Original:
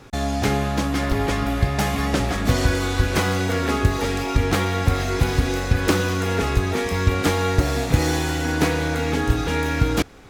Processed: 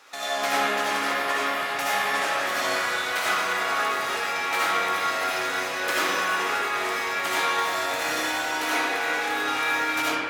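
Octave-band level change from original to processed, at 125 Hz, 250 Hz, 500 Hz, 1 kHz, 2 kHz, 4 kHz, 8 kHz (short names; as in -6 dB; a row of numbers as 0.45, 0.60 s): -30.5, -14.0, -6.0, +2.0, +3.0, +1.0, -1.5 dB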